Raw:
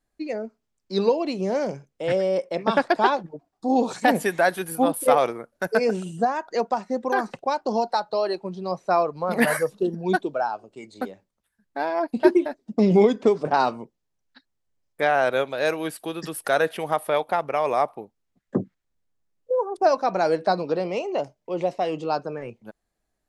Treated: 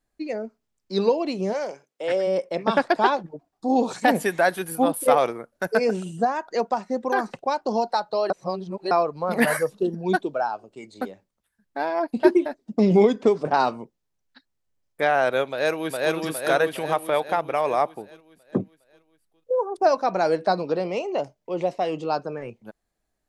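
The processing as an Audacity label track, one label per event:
1.520000	2.260000	HPF 600 Hz -> 280 Hz
8.300000	8.910000	reverse
15.490000	16.150000	echo throw 0.41 s, feedback 55%, level -0.5 dB

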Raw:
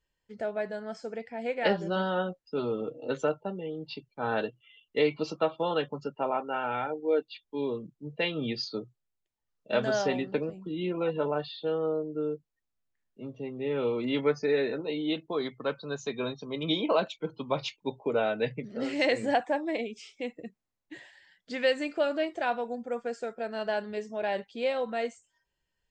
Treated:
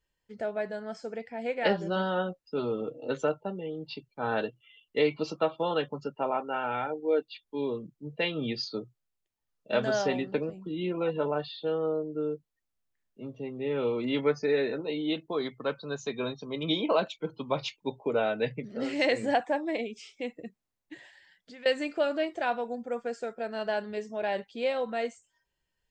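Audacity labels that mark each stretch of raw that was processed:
20.940000	21.660000	compressor 4:1, threshold -47 dBFS

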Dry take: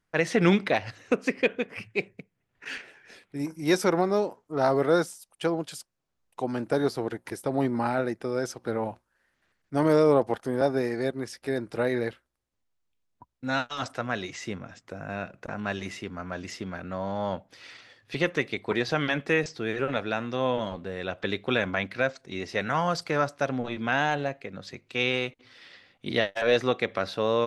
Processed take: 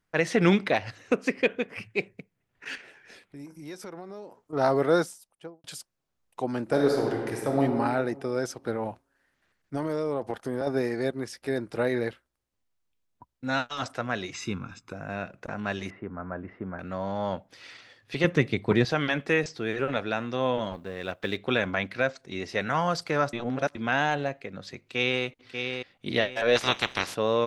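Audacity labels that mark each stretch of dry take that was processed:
2.750000	4.530000	compressor 3:1, threshold -43 dBFS
5.030000	5.640000	studio fade out
6.630000	7.620000	reverb throw, RT60 1.6 s, DRR 0.5 dB
8.710000	10.670000	compressor, threshold -25 dBFS
14.340000	14.930000	comb 0.8 ms, depth 76%
15.900000	16.790000	LPF 1600 Hz 24 dB/oct
18.240000	18.850000	bell 120 Hz +12.5 dB 2.4 oct
20.730000	21.370000	G.711 law mismatch coded by A
23.330000	23.750000	reverse
24.820000	25.230000	echo throw 0.59 s, feedback 40%, level -6 dB
26.550000	27.140000	spectral limiter ceiling under each frame's peak by 28 dB

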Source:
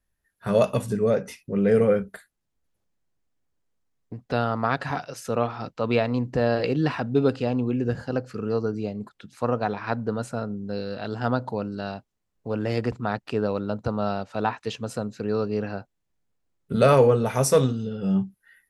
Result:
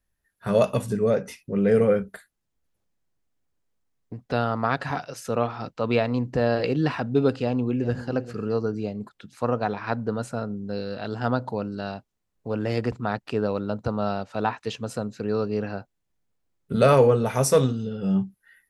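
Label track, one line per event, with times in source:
7.420000	8.070000	echo throw 0.4 s, feedback 15%, level -14.5 dB

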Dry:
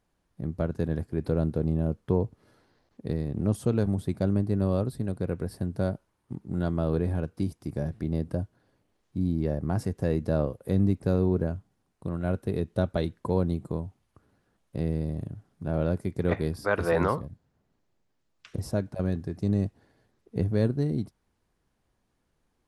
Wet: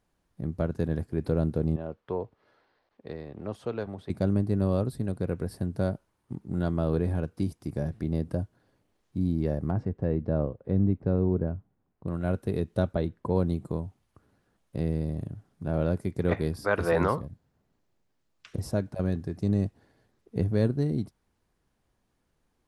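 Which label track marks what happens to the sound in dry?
1.760000	4.100000	three-band isolator lows -14 dB, under 430 Hz, highs -20 dB, over 4400 Hz
9.710000	12.080000	tape spacing loss at 10 kHz 39 dB
12.930000	13.340000	high shelf 2200 Hz -> 3300 Hz -11.5 dB

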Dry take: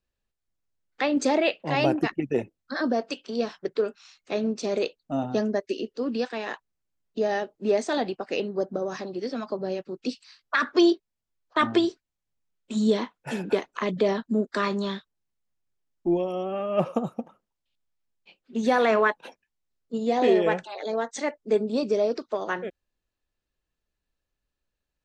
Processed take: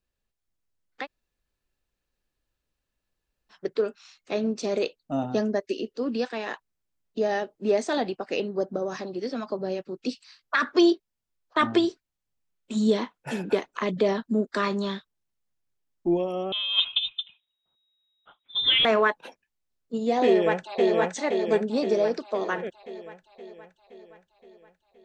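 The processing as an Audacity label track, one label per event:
1.020000	3.540000	room tone, crossfade 0.10 s
16.520000	18.850000	inverted band carrier 3800 Hz
20.260000	20.930000	echo throw 0.52 s, feedback 60%, level -2 dB

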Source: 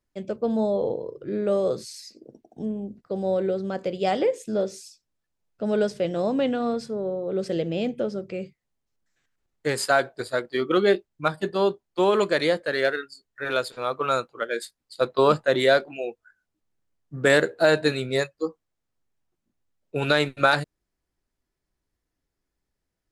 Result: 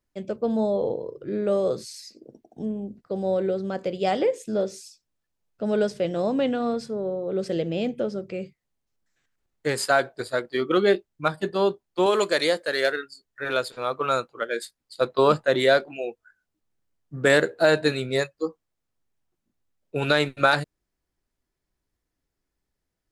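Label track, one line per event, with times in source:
12.060000	12.920000	tone controls bass -8 dB, treble +8 dB

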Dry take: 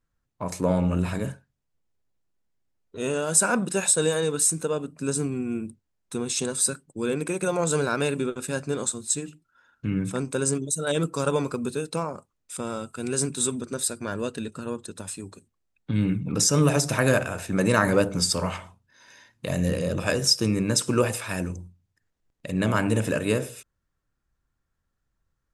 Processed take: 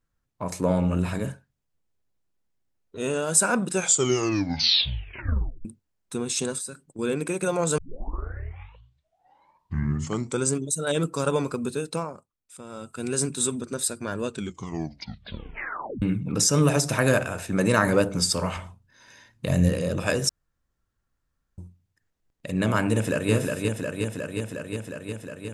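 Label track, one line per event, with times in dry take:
3.710000	3.710000	tape stop 1.94 s
6.580000	6.990000	compressor 2:1, threshold -40 dBFS
7.780000	7.780000	tape start 2.76 s
11.940000	12.990000	dip -10.5 dB, fades 0.31 s
14.250000	14.250000	tape stop 1.77 s
18.560000	19.690000	low shelf 170 Hz +9.5 dB
20.290000	21.580000	room tone
22.920000	23.320000	echo throw 0.36 s, feedback 80%, level -3 dB

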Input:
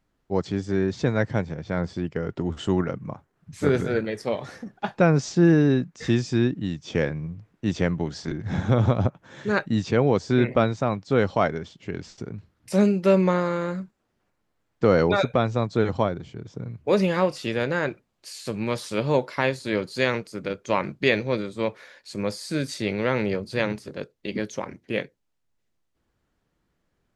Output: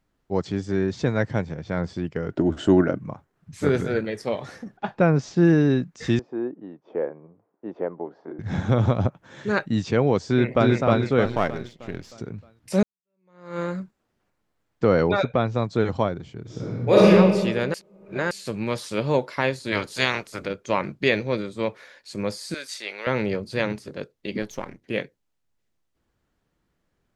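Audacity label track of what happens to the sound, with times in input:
2.310000	3.000000	small resonant body resonances 310/610/1500 Hz, height 11 dB, ringing for 25 ms
4.770000	5.380000	LPF 2600 Hz 6 dB/oct
6.190000	8.390000	Butterworth band-pass 600 Hz, Q 0.9
10.290000	10.730000	echo throw 0.31 s, feedback 45%, level -0.5 dB
11.250000	12.120000	half-wave gain negative side -7 dB
12.830000	13.590000	fade in exponential
14.840000	15.550000	air absorption 97 m
16.430000	17.080000	reverb throw, RT60 1.5 s, DRR -8 dB
17.740000	18.310000	reverse
19.710000	20.450000	spectral limiter ceiling under each frame's peak by 17 dB
22.540000	23.070000	HPF 870 Hz
24.420000	24.840000	half-wave gain negative side -7 dB

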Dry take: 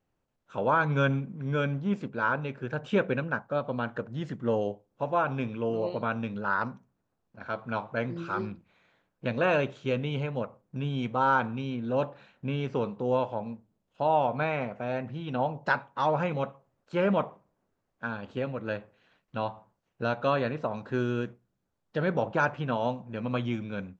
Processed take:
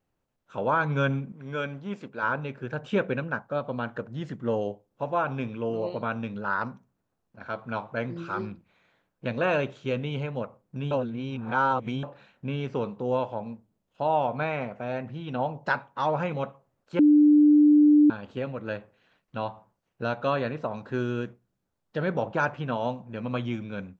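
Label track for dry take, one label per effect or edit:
1.320000	2.230000	low shelf 250 Hz -11 dB
10.910000	12.030000	reverse
16.990000	18.100000	bleep 297 Hz -13.5 dBFS

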